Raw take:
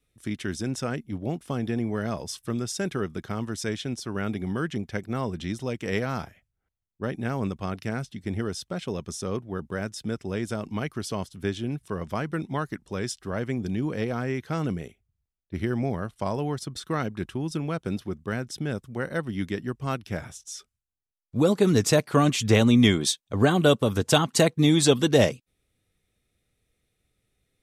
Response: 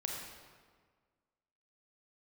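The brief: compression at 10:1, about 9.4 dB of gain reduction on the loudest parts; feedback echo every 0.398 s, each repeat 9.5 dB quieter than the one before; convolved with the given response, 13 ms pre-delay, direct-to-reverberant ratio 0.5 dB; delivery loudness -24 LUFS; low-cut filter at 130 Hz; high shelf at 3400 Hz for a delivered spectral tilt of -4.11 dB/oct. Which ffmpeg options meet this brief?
-filter_complex "[0:a]highpass=130,highshelf=f=3.4k:g=8,acompressor=threshold=-23dB:ratio=10,aecho=1:1:398|796|1194|1592:0.335|0.111|0.0365|0.012,asplit=2[a][b];[1:a]atrim=start_sample=2205,adelay=13[c];[b][c]afir=irnorm=-1:irlink=0,volume=-2dB[d];[a][d]amix=inputs=2:normalize=0,volume=3.5dB"

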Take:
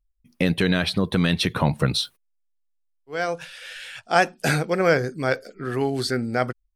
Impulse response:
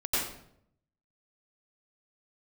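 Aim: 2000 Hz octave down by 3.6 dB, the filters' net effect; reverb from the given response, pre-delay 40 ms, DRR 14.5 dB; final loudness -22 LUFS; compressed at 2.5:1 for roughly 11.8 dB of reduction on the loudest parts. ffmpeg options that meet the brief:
-filter_complex "[0:a]equalizer=f=2k:t=o:g=-5,acompressor=threshold=-34dB:ratio=2.5,asplit=2[a][b];[1:a]atrim=start_sample=2205,adelay=40[c];[b][c]afir=irnorm=-1:irlink=0,volume=-23.5dB[d];[a][d]amix=inputs=2:normalize=0,volume=12dB"

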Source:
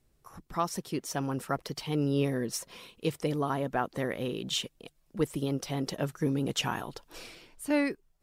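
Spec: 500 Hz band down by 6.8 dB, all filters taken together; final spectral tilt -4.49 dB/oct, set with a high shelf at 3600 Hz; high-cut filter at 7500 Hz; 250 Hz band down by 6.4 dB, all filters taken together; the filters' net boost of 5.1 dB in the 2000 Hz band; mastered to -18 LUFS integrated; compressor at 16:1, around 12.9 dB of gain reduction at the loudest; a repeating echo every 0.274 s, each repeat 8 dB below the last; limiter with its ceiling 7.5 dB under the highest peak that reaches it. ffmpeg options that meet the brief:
-af "lowpass=7.5k,equalizer=f=250:t=o:g=-6,equalizer=f=500:t=o:g=-7,equalizer=f=2k:t=o:g=9,highshelf=f=3.6k:g=-8,acompressor=threshold=-38dB:ratio=16,alimiter=level_in=9.5dB:limit=-24dB:level=0:latency=1,volume=-9.5dB,aecho=1:1:274|548|822|1096|1370:0.398|0.159|0.0637|0.0255|0.0102,volume=26.5dB"

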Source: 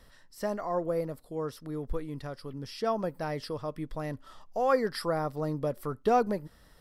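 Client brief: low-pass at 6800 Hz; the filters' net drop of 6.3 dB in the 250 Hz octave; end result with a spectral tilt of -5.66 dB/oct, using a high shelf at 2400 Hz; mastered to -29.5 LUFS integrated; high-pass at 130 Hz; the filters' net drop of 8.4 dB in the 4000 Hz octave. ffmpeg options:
-af "highpass=130,lowpass=6.8k,equalizer=f=250:t=o:g=-8,highshelf=f=2.4k:g=-6.5,equalizer=f=4k:t=o:g=-3.5,volume=5dB"

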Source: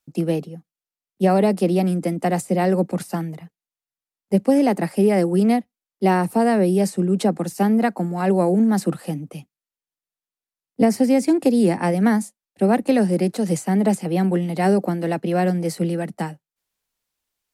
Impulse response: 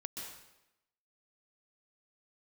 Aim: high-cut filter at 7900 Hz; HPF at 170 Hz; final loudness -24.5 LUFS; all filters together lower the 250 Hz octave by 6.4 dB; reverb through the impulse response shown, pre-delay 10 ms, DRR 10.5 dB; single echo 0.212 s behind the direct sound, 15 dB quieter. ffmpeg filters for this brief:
-filter_complex "[0:a]highpass=170,lowpass=7.9k,equalizer=f=250:t=o:g=-7,aecho=1:1:212:0.178,asplit=2[a][b];[1:a]atrim=start_sample=2205,adelay=10[c];[b][c]afir=irnorm=-1:irlink=0,volume=-9dB[d];[a][d]amix=inputs=2:normalize=0,volume=-1dB"

